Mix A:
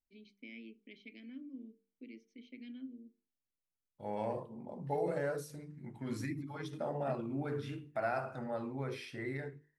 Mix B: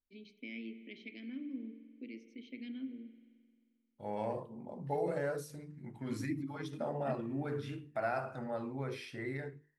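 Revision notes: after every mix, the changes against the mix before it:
first voice +3.5 dB
reverb: on, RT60 2.0 s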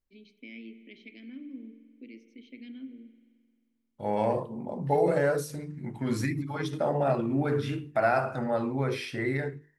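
second voice +10.5 dB

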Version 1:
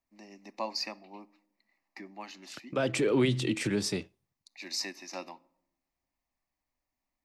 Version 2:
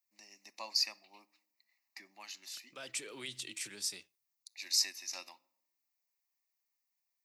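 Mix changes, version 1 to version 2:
first voice +7.5 dB
master: add first-order pre-emphasis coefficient 0.97

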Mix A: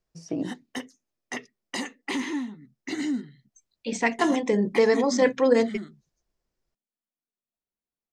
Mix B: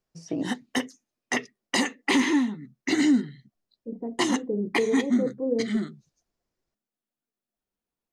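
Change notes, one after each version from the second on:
second voice: add transistor ladder low-pass 550 Hz, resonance 25%
background +7.5 dB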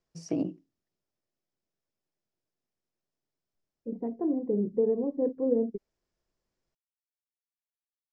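background: muted

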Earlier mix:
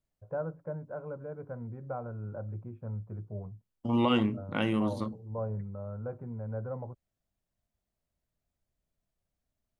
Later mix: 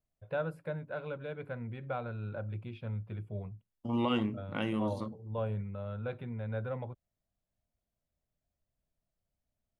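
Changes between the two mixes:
first voice: remove low-pass filter 1,200 Hz 24 dB per octave
second voice −4.5 dB

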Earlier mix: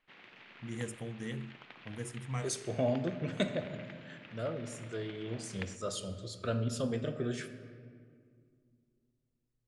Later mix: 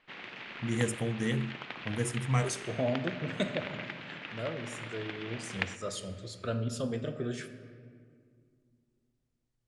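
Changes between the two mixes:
first voice +9.0 dB
background +11.0 dB

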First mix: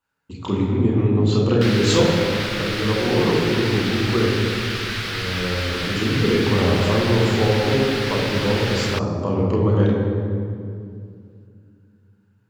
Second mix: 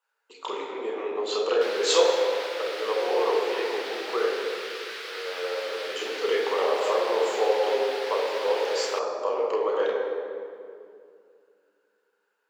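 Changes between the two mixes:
background −9.0 dB
master: add Chebyshev high-pass filter 450 Hz, order 4

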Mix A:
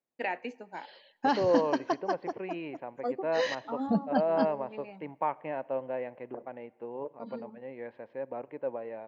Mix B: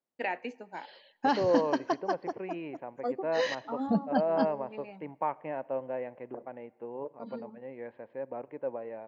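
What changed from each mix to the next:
second voice: add high-frequency loss of the air 230 metres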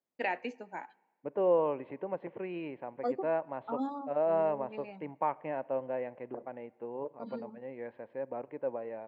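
background: muted

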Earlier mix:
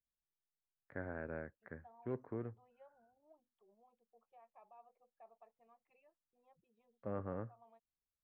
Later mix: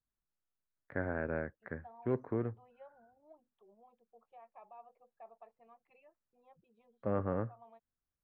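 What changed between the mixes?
first voice +8.0 dB
second voice +7.0 dB

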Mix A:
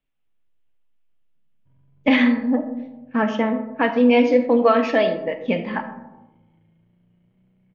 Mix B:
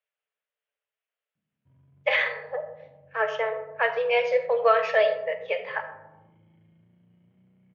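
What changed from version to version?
speech: add Chebyshev high-pass with heavy ripple 420 Hz, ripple 6 dB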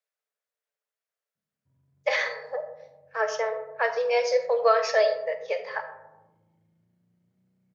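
background −8.5 dB
master: add high shelf with overshoot 4,000 Hz +10.5 dB, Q 3

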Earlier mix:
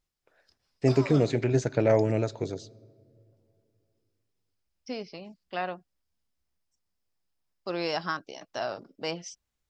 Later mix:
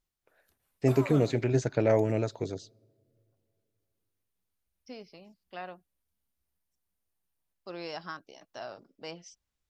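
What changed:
first voice: send −11.0 dB
second voice −9.0 dB
background: remove low-pass with resonance 5,100 Hz, resonance Q 12

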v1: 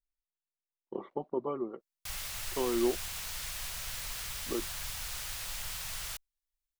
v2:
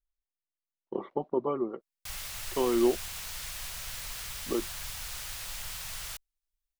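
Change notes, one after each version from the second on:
speech +4.5 dB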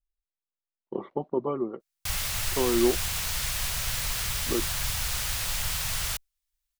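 background +9.0 dB
master: add parametric band 96 Hz +6 dB 2.4 octaves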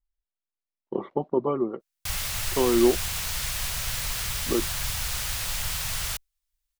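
speech +3.5 dB

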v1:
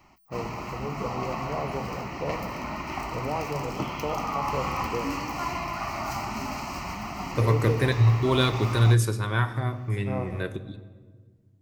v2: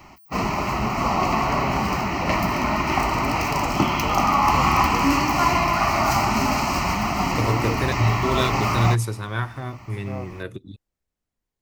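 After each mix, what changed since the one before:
background +11.5 dB
reverb: off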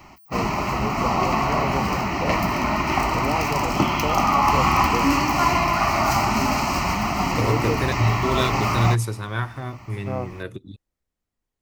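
first voice +6.0 dB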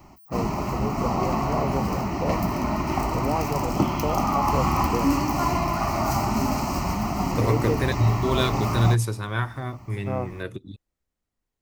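background: add parametric band 2,400 Hz −11 dB 2.5 octaves

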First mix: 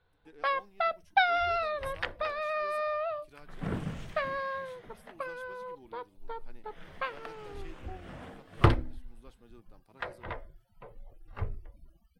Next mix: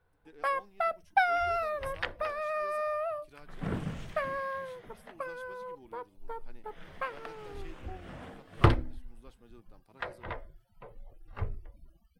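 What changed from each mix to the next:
first sound: remove low-pass with resonance 3,900 Hz, resonance Q 3.8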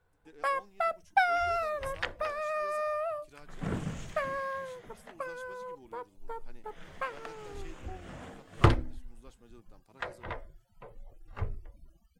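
master: add parametric band 7,000 Hz +11 dB 0.52 octaves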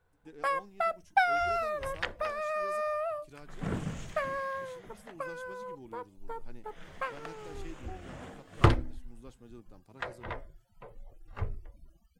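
speech: add low-shelf EQ 350 Hz +9.5 dB

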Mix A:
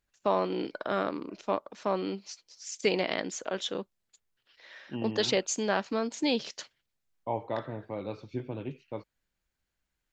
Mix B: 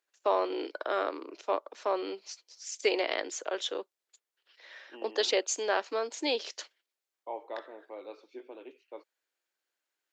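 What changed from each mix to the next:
second voice −6.0 dB
master: add Butterworth high-pass 330 Hz 36 dB per octave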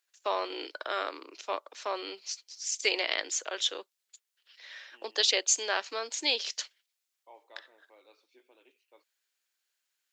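second voice −11.0 dB
master: add tilt shelving filter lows −8 dB, about 1,300 Hz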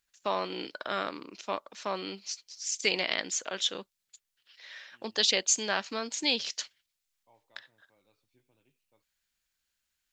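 second voice −11.0 dB
master: remove Butterworth high-pass 330 Hz 36 dB per octave

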